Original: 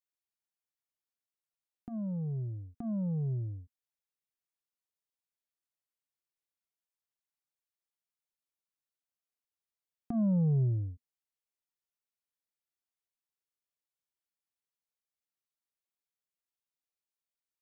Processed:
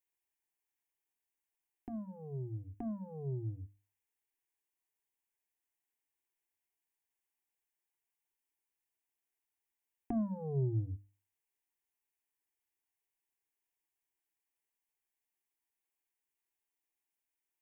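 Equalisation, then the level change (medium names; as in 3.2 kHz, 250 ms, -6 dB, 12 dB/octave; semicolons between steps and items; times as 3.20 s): hum notches 50/100/150/200/250/300 Hz; hum notches 60/120 Hz; static phaser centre 860 Hz, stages 8; +5.0 dB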